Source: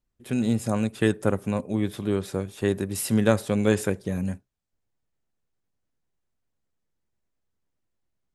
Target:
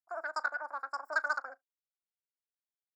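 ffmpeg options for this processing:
-filter_complex "[0:a]afwtdn=0.0178,asplit=3[s0][s1][s2];[s0]bandpass=f=530:t=q:w=8,volume=1[s3];[s1]bandpass=f=1840:t=q:w=8,volume=0.501[s4];[s2]bandpass=f=2480:t=q:w=8,volume=0.355[s5];[s3][s4][s5]amix=inputs=3:normalize=0,aecho=1:1:104|208:0.075|0.0127,asetrate=124362,aresample=44100,highpass=260,equalizer=f=750:t=o:w=0.96:g=12.5,volume=0.596"

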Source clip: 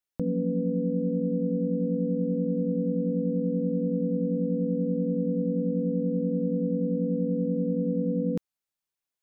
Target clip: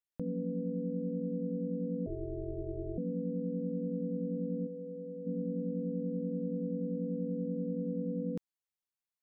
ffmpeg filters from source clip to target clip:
-filter_complex "[0:a]asettb=1/sr,asplit=3[s0][s1][s2];[s0]atrim=end=2.064[s3];[s1]atrim=start=2.06:end=2.98,asetpts=PTS-STARTPTS,afade=t=in:d=0.004:c=qsin,afade=t=out:st=0.916:d=0.004:c=qsin,aeval=exprs='val(0)*sin(2*PI*150*n/s)':c=same[s4];[s2]atrim=start=2.976[s5];[s3][s4]acrossfade=d=0.004:c1=hsin:c2=qsin[s6];[s6][s5]acrossfade=d=0.004:c1=qsin:c2=hsin,asplit=3[s7][s8][s9];[s7]afade=t=out:st=4.66:d=0.02[s10];[s8]equalizer=f=220:w=1.5:g=-15,afade=t=in:st=4.66:d=0.02,afade=t=out:st=5.25:d=0.02[s11];[s9]afade=t=in:st=5.25:d=0.02[s12];[s10][s11][s12]amix=inputs=3:normalize=0,volume=0.376"

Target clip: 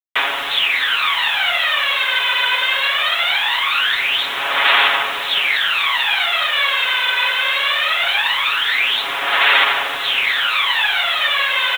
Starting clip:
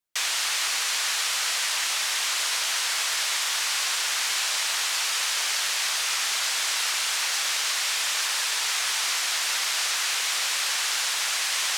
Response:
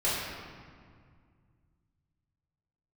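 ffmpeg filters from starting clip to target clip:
-filter_complex "[0:a]aphaser=in_gain=1:out_gain=1:delay=2:decay=0.7:speed=0.21:type=sinusoidal,asettb=1/sr,asplit=3[s0][s1][s2];[s0]atrim=end=7.784[s3];[s1]atrim=start=7.78:end=8.18,asetpts=PTS-STARTPTS,afade=t=in:d=0.004:c=qsin,afade=t=out:st=0.396:d=0.004:c=qsin,afreqshift=-31[s4];[s2]atrim=start=8.176[s5];[s3][s4]acrossfade=d=0.004:c1=hsin:c2=qsin[s6];[s6][s5]acrossfade=d=0.004:c1=qsin:c2=hsin,asplit=2[s7][s8];[s8]aeval=exprs='sgn(val(0))*max(abs(val(0))-0.00944,0)':c=same,volume=0.447[s9];[s7][s9]amix=inputs=2:normalize=0,aecho=1:1:7.2:0.67,asplit=2[s10][s11];[s11]aecho=0:1:690:0.126[s12];[s10][s12]amix=inputs=2:normalize=0,aresample=8000,aresample=44100,acrusher=bits=6:mix=0:aa=0.000001,volume=1.78"

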